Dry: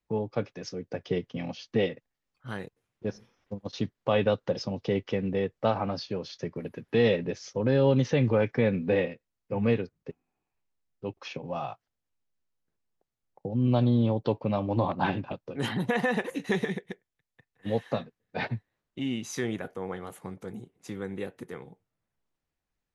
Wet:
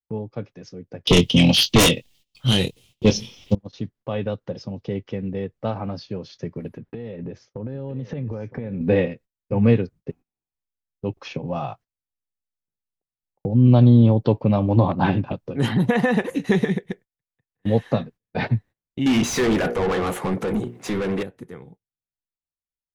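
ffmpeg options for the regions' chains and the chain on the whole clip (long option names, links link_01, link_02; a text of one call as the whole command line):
ffmpeg -i in.wav -filter_complex "[0:a]asettb=1/sr,asplit=3[link_01][link_02][link_03];[link_01]atrim=end=1.074[link_04];[link_02]atrim=start=1.07:end=3.55,asetpts=PTS-STARTPTS,afade=type=in:duration=0.004:curve=qsin,afade=type=out:start_time=2.476:duration=0.004:curve=qsin,highshelf=frequency=2200:width_type=q:width=3:gain=11.5,aeval=exprs='0.447*sin(PI/2*5.62*val(0)/0.447)':channel_layout=same,asplit=2[link_05][link_06];[link_06]adelay=23,volume=-10.5dB[link_07];[link_05][link_07]amix=inputs=2:normalize=0,atrim=end_sample=109368[link_08];[link_03]atrim=start=3.546[link_09];[link_04][link_08]acrossfade=duration=0.004:curve1=hsin:curve2=qsin[link_10];[link_10][link_09]acrossfade=duration=0.004:curve1=qsin:curve2=hsin,asettb=1/sr,asplit=3[link_11][link_12][link_13];[link_11]atrim=end=6.774[link_14];[link_12]atrim=start=6.77:end=8.81,asetpts=PTS-STARTPTS,afade=type=in:duration=0.004:curve=qsin,afade=type=out:start_time=2.036:duration=0.004:curve=qsin,lowpass=frequency=1600:poles=1,acompressor=threshold=-34dB:ratio=10:attack=3.2:release=140:knee=1:detection=peak,aecho=1:1:964:0.168,atrim=end_sample=89964[link_15];[link_13]atrim=start=8.806[link_16];[link_14][link_15]acrossfade=duration=0.004:curve1=hsin:curve2=qsin[link_17];[link_17][link_16]acrossfade=duration=0.004:curve1=qsin:curve2=hsin,asettb=1/sr,asplit=3[link_18][link_19][link_20];[link_18]atrim=end=19.064[link_21];[link_19]atrim=start=19.06:end=21.23,asetpts=PTS-STARTPTS,afade=type=in:duration=0.004:curve=qsin,afade=type=out:start_time=2.166:duration=0.004:curve=qsin,equalizer=frequency=5400:width=0.41:gain=-3.5,bandreject=frequency=60:width_type=h:width=6,bandreject=frequency=120:width_type=h:width=6,bandreject=frequency=180:width_type=h:width=6,bandreject=frequency=240:width_type=h:width=6,bandreject=frequency=300:width_type=h:width=6,bandreject=frequency=360:width_type=h:width=6,bandreject=frequency=420:width_type=h:width=6,bandreject=frequency=480:width_type=h:width=6,bandreject=frequency=540:width_type=h:width=6,asplit=2[link_22][link_23];[link_23]highpass=frequency=720:poles=1,volume=32dB,asoftclip=type=tanh:threshold=-19dB[link_24];[link_22][link_24]amix=inputs=2:normalize=0,lowpass=frequency=3900:poles=1,volume=-6dB[link_25];[link_20]atrim=start=21.226[link_26];[link_21][link_25]acrossfade=duration=0.004:curve1=hsin:curve2=qsin[link_27];[link_27][link_26]acrossfade=duration=0.004:curve1=qsin:curve2=hsin,agate=range=-22dB:threshold=-50dB:ratio=16:detection=peak,lowshelf=frequency=300:gain=9.5,dynaudnorm=framelen=320:gausssize=21:maxgain=11.5dB,volume=-3dB" out.wav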